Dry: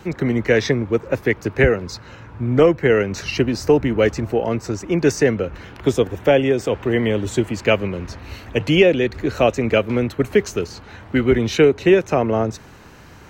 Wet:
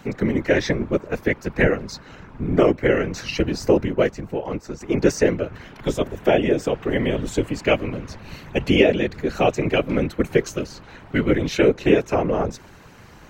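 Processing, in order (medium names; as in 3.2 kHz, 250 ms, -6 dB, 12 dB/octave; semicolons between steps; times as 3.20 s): whisper effect; 3.85–4.81 s: upward expansion 1.5:1, over -25 dBFS; trim -2.5 dB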